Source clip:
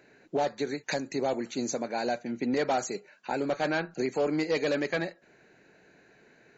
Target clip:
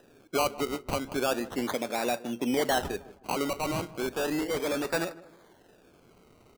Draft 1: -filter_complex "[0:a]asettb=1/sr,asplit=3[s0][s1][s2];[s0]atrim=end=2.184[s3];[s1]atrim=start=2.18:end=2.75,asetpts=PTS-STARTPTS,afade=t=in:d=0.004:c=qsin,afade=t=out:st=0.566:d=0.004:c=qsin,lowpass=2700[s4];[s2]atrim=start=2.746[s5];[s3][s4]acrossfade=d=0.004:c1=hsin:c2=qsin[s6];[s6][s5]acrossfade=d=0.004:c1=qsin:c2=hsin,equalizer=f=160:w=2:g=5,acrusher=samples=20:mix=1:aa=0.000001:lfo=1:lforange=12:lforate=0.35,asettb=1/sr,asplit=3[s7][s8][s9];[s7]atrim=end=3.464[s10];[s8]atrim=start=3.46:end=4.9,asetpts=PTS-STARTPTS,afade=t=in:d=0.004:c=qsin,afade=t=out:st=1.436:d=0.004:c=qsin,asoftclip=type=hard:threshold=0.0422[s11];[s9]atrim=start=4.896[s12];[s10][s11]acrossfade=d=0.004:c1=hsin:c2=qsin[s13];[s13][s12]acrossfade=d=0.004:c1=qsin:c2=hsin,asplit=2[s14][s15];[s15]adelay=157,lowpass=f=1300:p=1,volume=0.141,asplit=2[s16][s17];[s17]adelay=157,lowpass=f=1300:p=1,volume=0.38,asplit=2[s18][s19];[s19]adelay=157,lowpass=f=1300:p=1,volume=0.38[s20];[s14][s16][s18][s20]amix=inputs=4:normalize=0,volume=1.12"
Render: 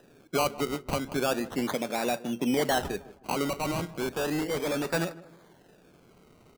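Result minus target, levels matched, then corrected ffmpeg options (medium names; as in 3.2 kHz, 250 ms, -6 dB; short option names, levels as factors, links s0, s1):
125 Hz band +3.5 dB
-filter_complex "[0:a]asettb=1/sr,asplit=3[s0][s1][s2];[s0]atrim=end=2.184[s3];[s1]atrim=start=2.18:end=2.75,asetpts=PTS-STARTPTS,afade=t=in:d=0.004:c=qsin,afade=t=out:st=0.566:d=0.004:c=qsin,lowpass=2700[s4];[s2]atrim=start=2.746[s5];[s3][s4]acrossfade=d=0.004:c1=hsin:c2=qsin[s6];[s6][s5]acrossfade=d=0.004:c1=qsin:c2=hsin,equalizer=f=160:w=2:g=-3.5,acrusher=samples=20:mix=1:aa=0.000001:lfo=1:lforange=12:lforate=0.35,asettb=1/sr,asplit=3[s7][s8][s9];[s7]atrim=end=3.464[s10];[s8]atrim=start=3.46:end=4.9,asetpts=PTS-STARTPTS,afade=t=in:d=0.004:c=qsin,afade=t=out:st=1.436:d=0.004:c=qsin,asoftclip=type=hard:threshold=0.0422[s11];[s9]atrim=start=4.896[s12];[s10][s11]acrossfade=d=0.004:c1=hsin:c2=qsin[s13];[s13][s12]acrossfade=d=0.004:c1=qsin:c2=hsin,asplit=2[s14][s15];[s15]adelay=157,lowpass=f=1300:p=1,volume=0.141,asplit=2[s16][s17];[s17]adelay=157,lowpass=f=1300:p=1,volume=0.38,asplit=2[s18][s19];[s19]adelay=157,lowpass=f=1300:p=1,volume=0.38[s20];[s14][s16][s18][s20]amix=inputs=4:normalize=0,volume=1.12"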